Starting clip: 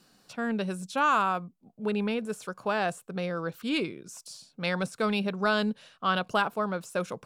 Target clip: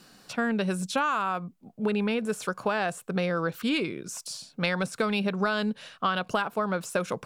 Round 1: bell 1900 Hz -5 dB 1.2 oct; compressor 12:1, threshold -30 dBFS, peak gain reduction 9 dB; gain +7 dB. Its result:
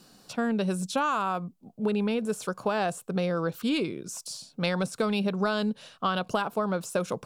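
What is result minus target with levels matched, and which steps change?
2000 Hz band -4.0 dB
change: bell 1900 Hz +2.5 dB 1.2 oct

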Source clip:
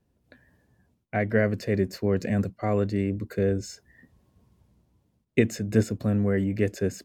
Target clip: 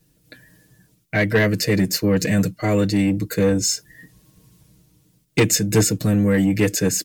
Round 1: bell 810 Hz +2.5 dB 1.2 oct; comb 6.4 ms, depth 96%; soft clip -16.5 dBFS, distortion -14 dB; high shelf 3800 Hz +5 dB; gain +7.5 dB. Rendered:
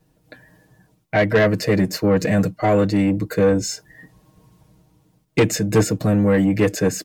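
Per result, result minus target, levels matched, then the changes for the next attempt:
8000 Hz band -7.5 dB; 1000 Hz band +5.5 dB
change: high shelf 3800 Hz +14 dB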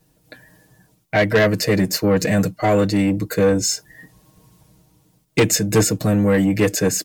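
1000 Hz band +5.5 dB
change: bell 810 Hz -8 dB 1.2 oct

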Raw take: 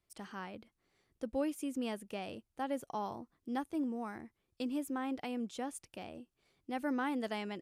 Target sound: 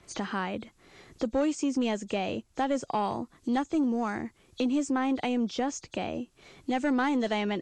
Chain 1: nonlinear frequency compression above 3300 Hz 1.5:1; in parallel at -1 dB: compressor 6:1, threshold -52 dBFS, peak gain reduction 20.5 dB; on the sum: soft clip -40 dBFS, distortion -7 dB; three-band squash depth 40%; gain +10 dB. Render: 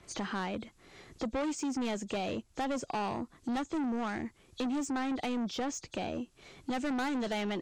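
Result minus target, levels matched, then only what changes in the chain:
soft clip: distortion +11 dB
change: soft clip -29 dBFS, distortion -18 dB

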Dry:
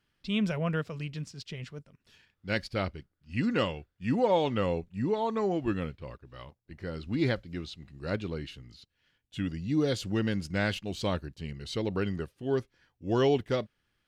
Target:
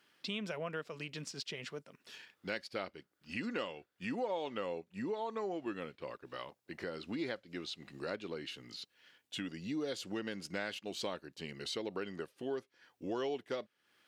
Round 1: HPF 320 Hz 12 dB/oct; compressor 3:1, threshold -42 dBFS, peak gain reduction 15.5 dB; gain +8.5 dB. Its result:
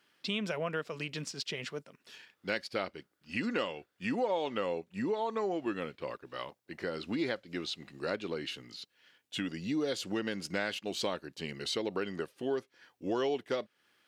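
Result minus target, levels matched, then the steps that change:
compressor: peak gain reduction -5.5 dB
change: compressor 3:1, threshold -50 dBFS, peak gain reduction 21 dB

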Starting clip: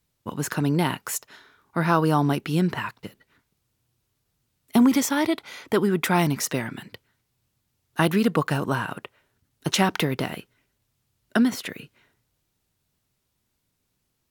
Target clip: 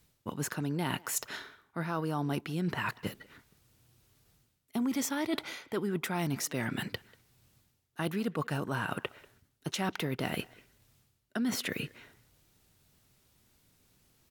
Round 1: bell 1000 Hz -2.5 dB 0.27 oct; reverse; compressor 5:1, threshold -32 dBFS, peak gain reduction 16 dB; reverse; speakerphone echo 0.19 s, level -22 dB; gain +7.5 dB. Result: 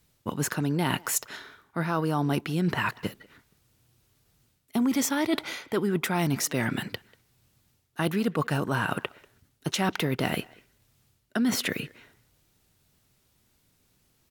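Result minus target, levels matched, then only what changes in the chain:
compressor: peak gain reduction -6.5 dB
change: compressor 5:1, threshold -40 dBFS, peak gain reduction 22.5 dB

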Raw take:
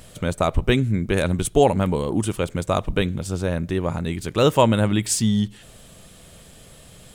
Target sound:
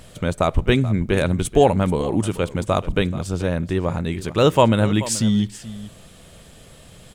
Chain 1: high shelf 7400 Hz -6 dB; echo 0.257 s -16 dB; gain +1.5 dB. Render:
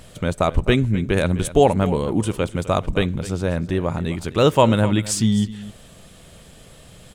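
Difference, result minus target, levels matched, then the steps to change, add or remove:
echo 0.175 s early
change: echo 0.432 s -16 dB

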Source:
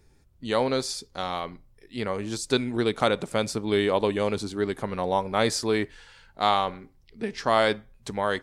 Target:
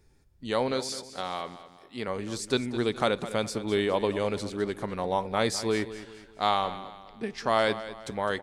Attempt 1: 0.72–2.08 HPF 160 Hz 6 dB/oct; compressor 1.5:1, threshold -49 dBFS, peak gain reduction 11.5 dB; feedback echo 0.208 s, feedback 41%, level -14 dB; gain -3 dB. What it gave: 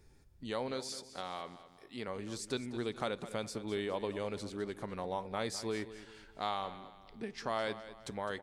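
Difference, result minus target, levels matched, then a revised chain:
compressor: peak gain reduction +11.5 dB
0.72–2.08 HPF 160 Hz 6 dB/oct; feedback echo 0.208 s, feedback 41%, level -14 dB; gain -3 dB

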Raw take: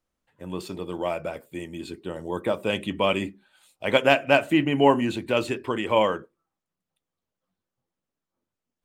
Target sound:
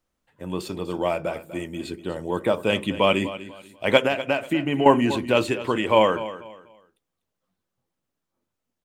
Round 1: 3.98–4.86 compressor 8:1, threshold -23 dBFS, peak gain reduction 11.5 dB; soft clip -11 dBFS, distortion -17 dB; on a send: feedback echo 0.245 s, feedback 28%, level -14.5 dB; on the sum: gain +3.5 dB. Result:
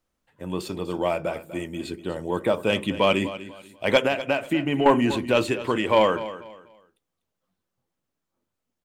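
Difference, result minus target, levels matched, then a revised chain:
soft clip: distortion +16 dB
3.98–4.86 compressor 8:1, threshold -23 dBFS, peak gain reduction 11.5 dB; soft clip -0.5 dBFS, distortion -32 dB; on a send: feedback echo 0.245 s, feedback 28%, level -14.5 dB; on the sum: gain +3.5 dB

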